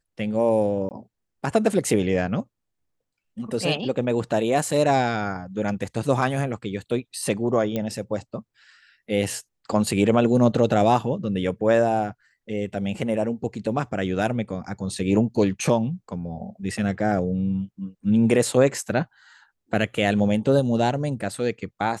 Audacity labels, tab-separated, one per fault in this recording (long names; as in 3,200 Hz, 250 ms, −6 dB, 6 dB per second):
0.890000	0.910000	drop-out 19 ms
7.760000	7.760000	click −14 dBFS